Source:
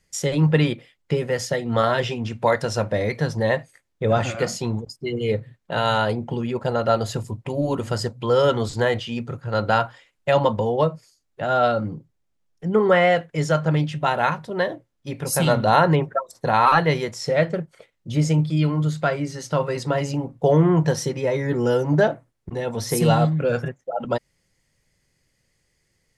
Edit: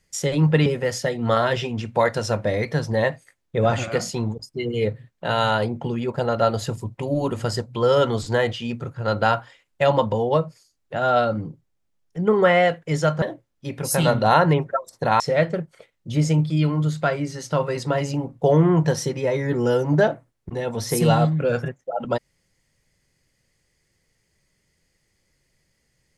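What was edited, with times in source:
0.66–1.13 cut
13.69–14.64 cut
16.62–17.2 cut

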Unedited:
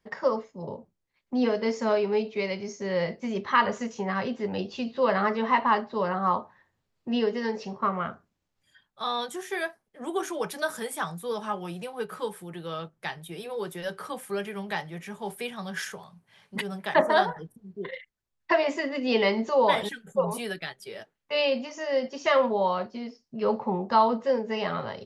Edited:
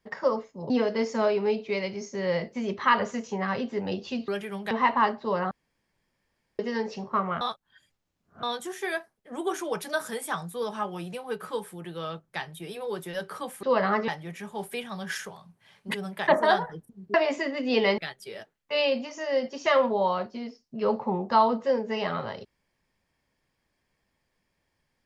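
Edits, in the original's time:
0.7–1.37 cut
4.95–5.4 swap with 14.32–14.75
6.2–7.28 room tone
8.1–9.12 reverse
17.81–18.52 cut
19.36–20.58 cut

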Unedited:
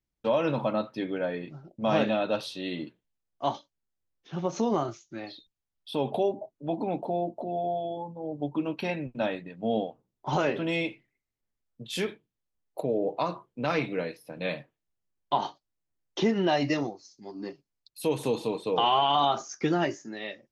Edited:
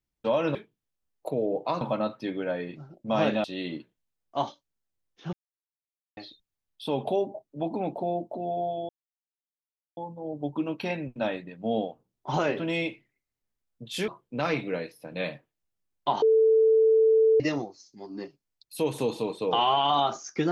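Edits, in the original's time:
2.18–2.51 cut
4.4–5.24 mute
7.96 insert silence 1.08 s
12.07–13.33 move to 0.55
15.47–16.65 bleep 443 Hz -16.5 dBFS

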